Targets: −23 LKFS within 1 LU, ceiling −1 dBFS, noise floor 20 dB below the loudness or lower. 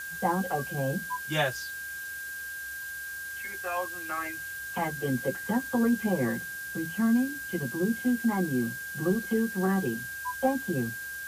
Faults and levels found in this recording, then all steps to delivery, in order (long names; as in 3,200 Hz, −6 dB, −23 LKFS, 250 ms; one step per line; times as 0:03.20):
interfering tone 1,600 Hz; level of the tone −36 dBFS; background noise floor −38 dBFS; target noise floor −50 dBFS; integrated loudness −30.0 LKFS; sample peak −13.0 dBFS; target loudness −23.0 LKFS
→ notch filter 1,600 Hz, Q 30
noise reduction from a noise print 12 dB
level +7 dB